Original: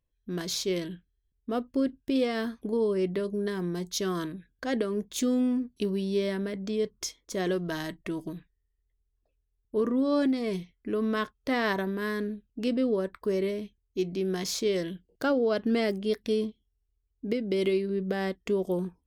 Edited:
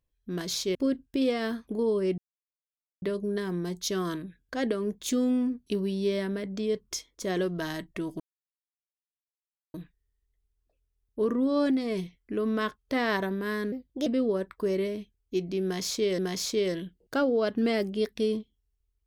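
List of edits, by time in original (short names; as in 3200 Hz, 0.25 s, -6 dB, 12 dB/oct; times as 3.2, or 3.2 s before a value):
0.75–1.69 cut
3.12 insert silence 0.84 s
8.3 insert silence 1.54 s
12.28–12.7 speed 122%
14.27–14.82 loop, 2 plays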